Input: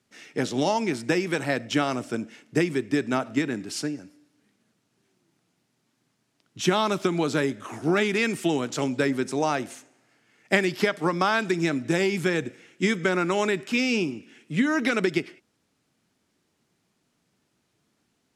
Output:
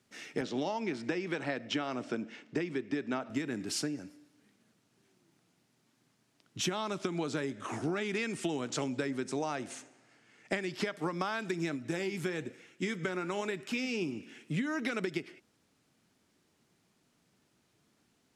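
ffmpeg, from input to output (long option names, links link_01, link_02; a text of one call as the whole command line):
ffmpeg -i in.wav -filter_complex "[0:a]asettb=1/sr,asplit=3[link_01][link_02][link_03];[link_01]atrim=end=0.414[link_04];[link_02]atrim=start=0.41:end=3.3,asetpts=PTS-STARTPTS,afade=type=in:duration=0.004:curve=qsin,afade=type=out:start_time=2.886:duration=0.004:curve=qsin,highpass=150,lowpass=4700[link_05];[link_03]atrim=start=3.296[link_06];[link_04][link_05]acrossfade=duration=0.004:curve1=hsin:curve2=qsin[link_07];[link_07][link_06]acrossfade=duration=0.004:curve1=qsin:curve2=hsin,asettb=1/sr,asplit=3[link_08][link_09][link_10];[link_08]atrim=end=6.714[link_11];[link_09]atrim=start=6.71:end=10.88,asetpts=PTS-STARTPTS,afade=type=in:duration=0.004:curve=qsin,afade=type=out:start_time=4.166:duration=0.004:curve=qsin,lowpass=frequency=10000:width=0.5412,lowpass=frequency=10000:width=1.3066[link_12];[link_10]atrim=start=10.876[link_13];[link_11][link_12]acrossfade=duration=0.004:curve1=hsin:curve2=qsin[link_14];[link_14][link_13]acrossfade=duration=0.004:curve1=qsin:curve2=hsin,asplit=3[link_15][link_16][link_17];[link_15]afade=type=out:start_time=11.75:duration=0.02[link_18];[link_16]flanger=delay=0.7:depth=7.5:regen=77:speed=1.1:shape=sinusoidal,afade=type=in:start_time=11.75:duration=0.02,afade=type=out:start_time=14.01:duration=0.02[link_19];[link_17]afade=type=in:start_time=14.01:duration=0.02[link_20];[link_18][link_19][link_20]amix=inputs=3:normalize=0,acompressor=threshold=-31dB:ratio=6" out.wav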